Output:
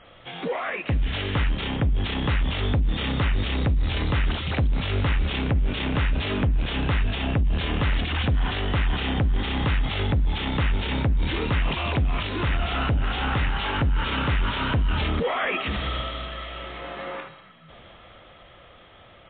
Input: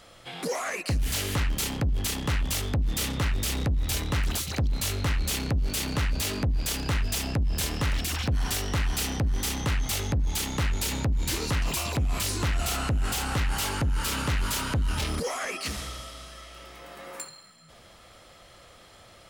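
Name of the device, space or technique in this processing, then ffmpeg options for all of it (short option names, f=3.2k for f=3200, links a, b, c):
low-bitrate web radio: -filter_complex "[0:a]asettb=1/sr,asplit=3[a][b][c];[a]atrim=end=12.044[d];[b]atrim=start=12.04:end=13.77,asetpts=PTS-STARTPTS,afade=t=in:d=0.004:c=qsin,afade=t=out:st=1.726:d=0.004:c=qsin,bandreject=f=48.33:t=h:w=4,bandreject=f=96.66:t=h:w=4,bandreject=f=144.99:t=h:w=4,bandreject=f=193.32:t=h:w=4,bandreject=f=241.65:t=h:w=4,bandreject=f=289.98:t=h:w=4,bandreject=f=338.31:t=h:w=4,bandreject=f=386.64:t=h:w=4,bandreject=f=434.97:t=h:w=4,bandreject=f=483.3:t=h:w=4,bandreject=f=531.63:t=h:w=4,bandreject=f=579.96:t=h:w=4,bandreject=f=628.29:t=h:w=4,bandreject=f=676.62:t=h:w=4,bandreject=f=724.95:t=h:w=4,bandreject=f=773.28:t=h:w=4,bandreject=f=821.61:t=h:w=4,bandreject=f=869.94:t=h:w=4,bandreject=f=918.27:t=h:w=4[e];[c]atrim=start=13.766[f];[d][e]acrossfade=d=0.004:c1=hsin:c2=qsin[g];[g][f]acrossfade=d=0.004:c1=qsin:c2=hsin,dynaudnorm=f=240:g=21:m=9.5dB,alimiter=limit=-19.5dB:level=0:latency=1:release=54,volume=3dB" -ar 8000 -c:a libmp3lame -b:a 24k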